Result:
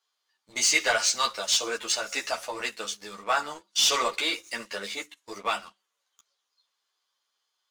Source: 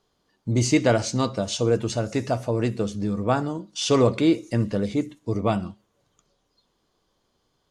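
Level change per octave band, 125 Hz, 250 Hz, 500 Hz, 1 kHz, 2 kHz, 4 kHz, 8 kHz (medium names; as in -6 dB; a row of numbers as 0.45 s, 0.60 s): under -30 dB, -21.0 dB, -10.5 dB, 0.0 dB, +6.0 dB, +7.0 dB, +6.5 dB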